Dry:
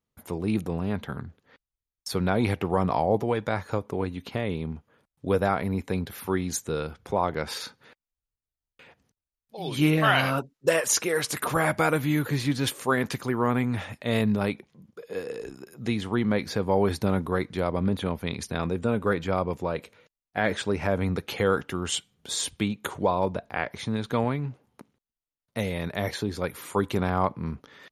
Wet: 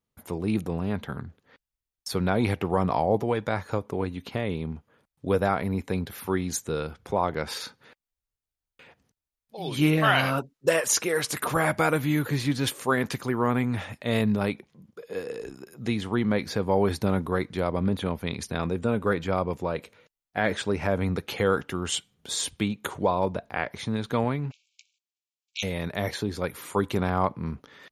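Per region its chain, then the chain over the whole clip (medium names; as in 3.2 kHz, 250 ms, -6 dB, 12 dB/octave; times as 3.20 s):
24.50–25.62 s: spectral peaks clipped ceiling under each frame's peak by 29 dB + brick-wall FIR band-pass 2.2–7.9 kHz
whole clip: none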